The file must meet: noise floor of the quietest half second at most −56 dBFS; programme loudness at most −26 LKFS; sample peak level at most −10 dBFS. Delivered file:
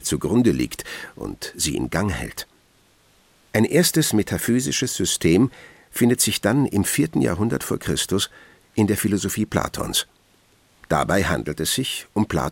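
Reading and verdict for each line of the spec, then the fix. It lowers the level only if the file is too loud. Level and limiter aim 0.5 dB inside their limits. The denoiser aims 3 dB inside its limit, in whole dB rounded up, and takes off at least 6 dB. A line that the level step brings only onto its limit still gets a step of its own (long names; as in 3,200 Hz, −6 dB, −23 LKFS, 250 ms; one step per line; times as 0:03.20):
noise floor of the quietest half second −58 dBFS: in spec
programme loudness −21.5 LKFS: out of spec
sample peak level −5.5 dBFS: out of spec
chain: level −5 dB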